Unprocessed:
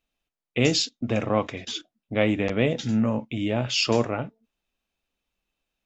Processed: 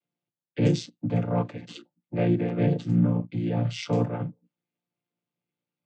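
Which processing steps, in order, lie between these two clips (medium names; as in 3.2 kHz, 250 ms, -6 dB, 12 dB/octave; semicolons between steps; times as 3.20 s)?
vocoder on a held chord major triad, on A#2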